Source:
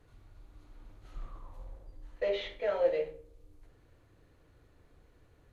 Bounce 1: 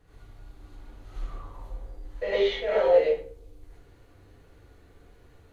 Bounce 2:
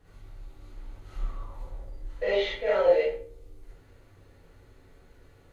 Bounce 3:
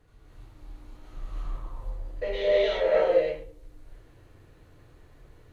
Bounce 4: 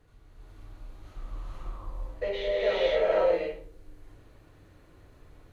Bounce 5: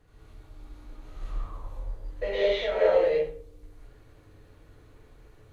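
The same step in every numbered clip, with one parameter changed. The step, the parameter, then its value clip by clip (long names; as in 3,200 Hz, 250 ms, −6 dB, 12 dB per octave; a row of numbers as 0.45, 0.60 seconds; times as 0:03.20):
reverb whose tail is shaped and stops, gate: 140, 90, 350, 520, 230 milliseconds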